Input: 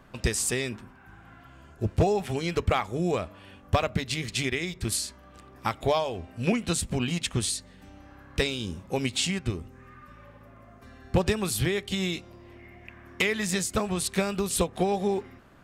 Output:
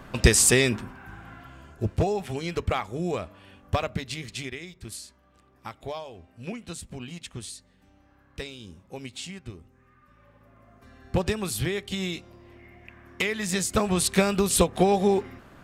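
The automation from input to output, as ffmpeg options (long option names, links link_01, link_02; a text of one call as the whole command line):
ffmpeg -i in.wav -af "volume=24.5dB,afade=type=out:start_time=0.75:duration=1.29:silence=0.281838,afade=type=out:start_time=3.84:duration=0.89:silence=0.375837,afade=type=in:start_time=10:duration=1.09:silence=0.354813,afade=type=in:start_time=13.39:duration=0.58:silence=0.473151" out.wav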